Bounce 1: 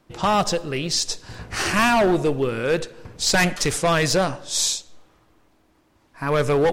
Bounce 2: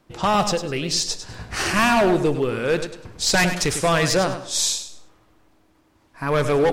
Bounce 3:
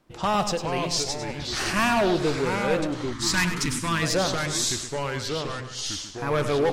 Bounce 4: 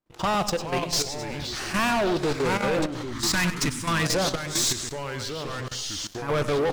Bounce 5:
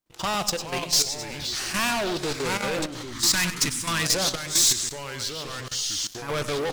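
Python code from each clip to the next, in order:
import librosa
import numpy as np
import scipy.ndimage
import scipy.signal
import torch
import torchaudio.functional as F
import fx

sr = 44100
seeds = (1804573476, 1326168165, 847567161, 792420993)

y1 = fx.echo_feedback(x, sr, ms=101, feedback_pct=25, wet_db=-10)
y2 = fx.echo_pitch(y1, sr, ms=366, semitones=-3, count=2, db_per_echo=-6.0)
y2 = fx.spec_box(y2, sr, start_s=3.13, length_s=0.89, low_hz=360.0, high_hz=840.0, gain_db=-15)
y2 = F.gain(torch.from_numpy(y2), -4.5).numpy()
y3 = fx.level_steps(y2, sr, step_db=13)
y3 = fx.leveller(y3, sr, passes=3)
y3 = F.gain(torch.from_numpy(y3), -4.5).numpy()
y4 = fx.high_shelf(y3, sr, hz=2500.0, db=11.5)
y4 = F.gain(torch.from_numpy(y4), -4.5).numpy()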